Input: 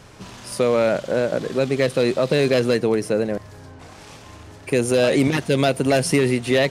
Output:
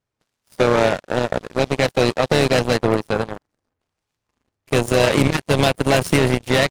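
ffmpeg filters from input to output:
-filter_complex "[0:a]asplit=4[s0][s1][s2][s3];[s1]asetrate=33038,aresample=44100,atempo=1.33484,volume=0.224[s4];[s2]asetrate=52444,aresample=44100,atempo=0.840896,volume=0.251[s5];[s3]asetrate=66075,aresample=44100,atempo=0.66742,volume=0.141[s6];[s0][s4][s5][s6]amix=inputs=4:normalize=0,asubboost=boost=2.5:cutoff=130,aeval=exprs='0.531*(cos(1*acos(clip(val(0)/0.531,-1,1)))-cos(1*PI/2))+0.00422*(cos(3*acos(clip(val(0)/0.531,-1,1)))-cos(3*PI/2))+0.075*(cos(7*acos(clip(val(0)/0.531,-1,1)))-cos(7*PI/2))':c=same,volume=1.33"

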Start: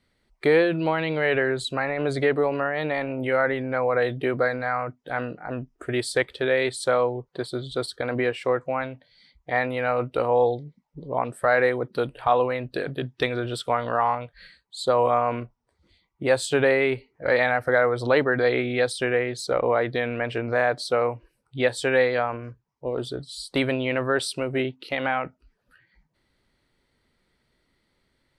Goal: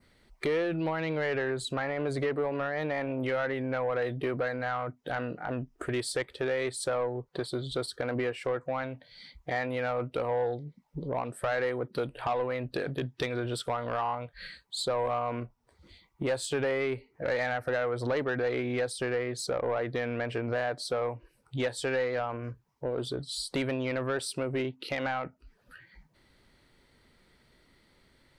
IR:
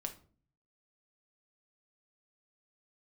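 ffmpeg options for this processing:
-af "adynamicequalizer=threshold=0.00562:dfrequency=3400:dqfactor=1.6:tfrequency=3400:tqfactor=1.6:attack=5:release=100:ratio=0.375:range=3.5:mode=cutabove:tftype=bell,acompressor=threshold=0.00794:ratio=2,asoftclip=type=tanh:threshold=0.0376,volume=2.11"

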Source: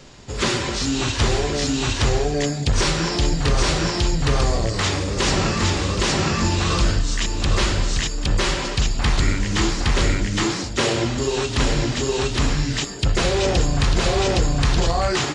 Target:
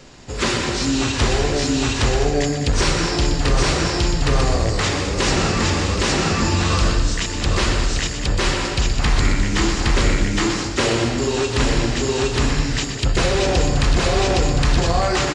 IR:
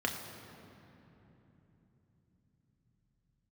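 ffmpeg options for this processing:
-filter_complex "[0:a]aecho=1:1:122.4|207:0.355|0.316,asplit=2[s0][s1];[1:a]atrim=start_sample=2205[s2];[s1][s2]afir=irnorm=-1:irlink=0,volume=0.112[s3];[s0][s3]amix=inputs=2:normalize=0"

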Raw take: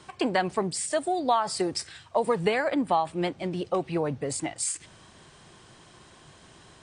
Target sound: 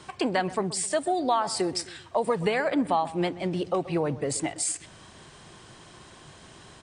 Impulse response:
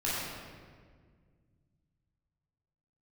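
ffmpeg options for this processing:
-filter_complex "[0:a]asplit=2[s0][s1];[s1]alimiter=limit=0.0708:level=0:latency=1:release=358,volume=1.33[s2];[s0][s2]amix=inputs=2:normalize=0,asplit=2[s3][s4];[s4]adelay=129,lowpass=f=1600:p=1,volume=0.158,asplit=2[s5][s6];[s6]adelay=129,lowpass=f=1600:p=1,volume=0.42,asplit=2[s7][s8];[s8]adelay=129,lowpass=f=1600:p=1,volume=0.42,asplit=2[s9][s10];[s10]adelay=129,lowpass=f=1600:p=1,volume=0.42[s11];[s3][s5][s7][s9][s11]amix=inputs=5:normalize=0,volume=0.631"

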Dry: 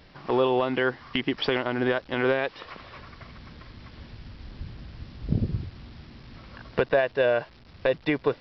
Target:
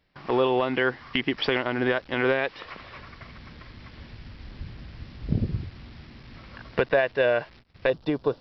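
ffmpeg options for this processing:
-af "agate=range=0.126:threshold=0.00447:ratio=16:detection=peak,asetnsamples=n=441:p=0,asendcmd='7.9 equalizer g -13.5',equalizer=f=2100:t=o:w=0.86:g=3.5"

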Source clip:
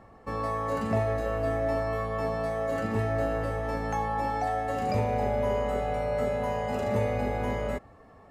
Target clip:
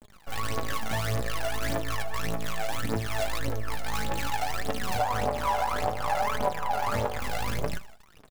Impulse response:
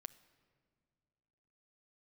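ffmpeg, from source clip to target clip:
-filter_complex "[0:a]acrusher=bits=5:dc=4:mix=0:aa=0.000001,asettb=1/sr,asplit=3[s0][s1][s2];[s0]atrim=end=4.994[s3];[s1]atrim=start=4.99:end=7.2,asetpts=PTS-STARTPTS,afade=t=in:d=0.004:c=qsin,afade=t=out:st=2.206:d=0.004:c=qsin,equalizer=f=880:t=o:w=1.5:g=13[s4];[s2]atrim=start=7.196[s5];[s3][s4]acrossfade=d=0.004:c1=hsin:c2=qsin[s6];[s6][s5]acrossfade=d=0.004:c1=qsin:c2=hsin,aecho=1:1:79|158|237:0.158|0.0571|0.0205,aphaser=in_gain=1:out_gain=1:delay=1.5:decay=0.75:speed=1.7:type=triangular,acompressor=threshold=0.1:ratio=6,flanger=delay=4.6:depth=8.7:regen=52:speed=0.63:shape=sinusoidal"

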